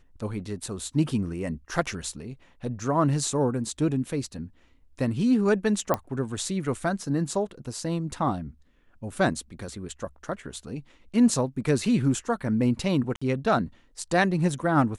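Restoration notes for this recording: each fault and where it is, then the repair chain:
5.94 pop -11 dBFS
13.16–13.21 gap 55 ms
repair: de-click; interpolate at 13.16, 55 ms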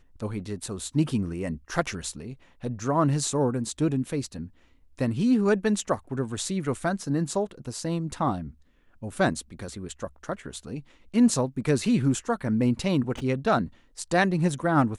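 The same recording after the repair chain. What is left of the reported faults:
none

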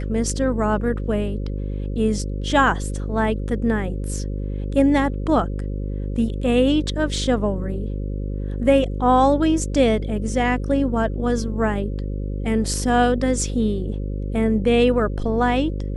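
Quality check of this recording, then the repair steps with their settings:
buzz 50 Hz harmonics 11 -26 dBFS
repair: de-hum 50 Hz, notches 11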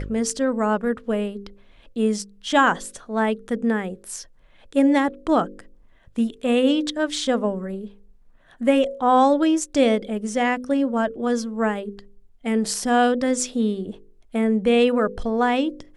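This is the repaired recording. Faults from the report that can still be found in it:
none

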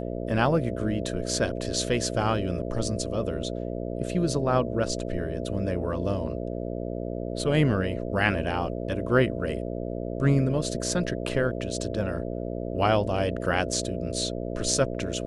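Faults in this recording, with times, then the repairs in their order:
buzz 60 Hz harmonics 11 -32 dBFS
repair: de-hum 60 Hz, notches 11

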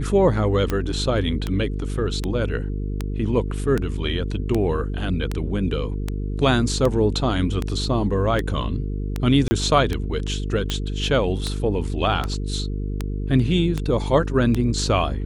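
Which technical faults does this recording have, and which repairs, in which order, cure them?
buzz 50 Hz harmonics 9 -26 dBFS
tick 78 rpm -10 dBFS
9.48–9.51 gap 30 ms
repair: de-click; de-hum 50 Hz, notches 9; interpolate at 9.48, 30 ms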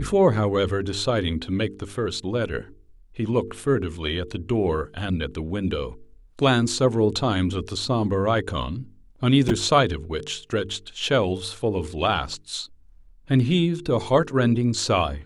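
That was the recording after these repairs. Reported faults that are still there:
none

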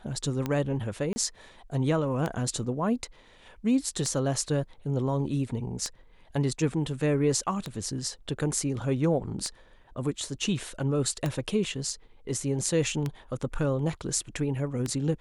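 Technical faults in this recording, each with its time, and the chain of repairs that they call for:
tick 33 1/3 rpm -16 dBFS
1.13–1.16 gap 30 ms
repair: de-click; interpolate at 1.13, 30 ms

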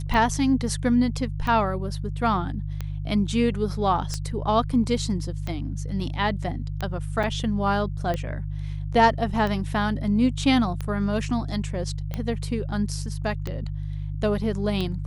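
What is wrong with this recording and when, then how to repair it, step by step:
hum 50 Hz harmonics 3 -30 dBFS
tick 45 rpm -16 dBFS
7.23–7.24 gap 5.8 ms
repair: de-click; de-hum 50 Hz, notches 3; interpolate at 7.23, 5.8 ms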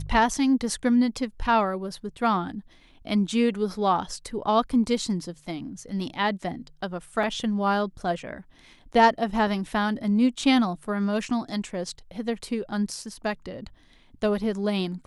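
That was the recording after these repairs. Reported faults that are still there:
none

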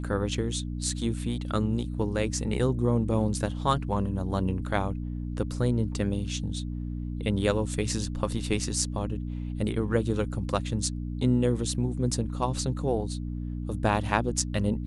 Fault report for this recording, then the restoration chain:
hum 60 Hz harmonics 5 -33 dBFS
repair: de-hum 60 Hz, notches 5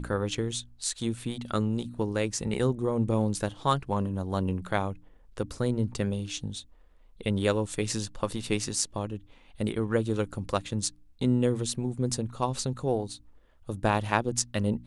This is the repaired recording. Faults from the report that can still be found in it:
none

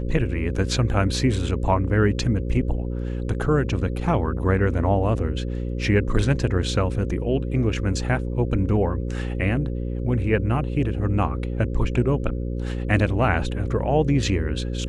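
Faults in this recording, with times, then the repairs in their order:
buzz 60 Hz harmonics 9 -27 dBFS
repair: de-hum 60 Hz, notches 9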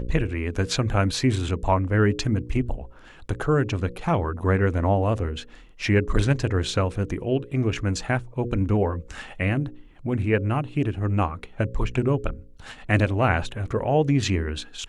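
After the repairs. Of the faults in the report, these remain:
none

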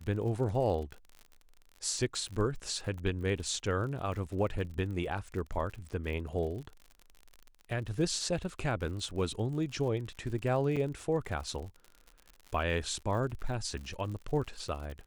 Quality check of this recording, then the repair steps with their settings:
crackle 60/s -40 dBFS
10.76–10.77 gap 6.2 ms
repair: de-click; interpolate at 10.76, 6.2 ms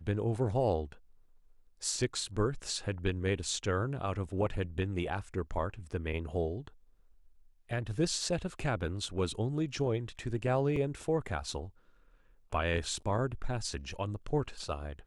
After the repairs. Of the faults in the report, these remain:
none

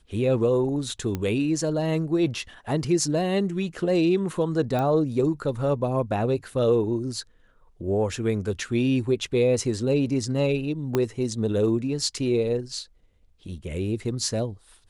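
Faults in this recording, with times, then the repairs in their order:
1.15 pop -15 dBFS
4.79 pop -16 dBFS
10.95 pop -10 dBFS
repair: de-click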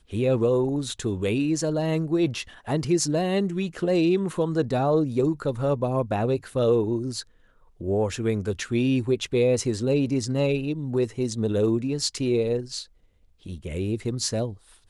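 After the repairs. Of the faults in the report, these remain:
1.15 pop
10.95 pop

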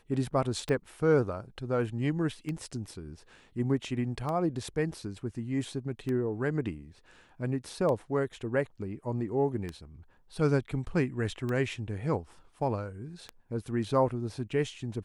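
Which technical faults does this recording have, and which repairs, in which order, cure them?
tick 33 1/3 rpm -22 dBFS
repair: de-click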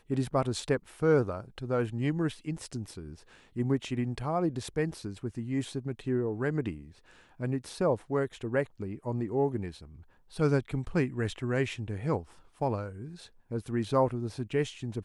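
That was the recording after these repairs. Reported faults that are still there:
none

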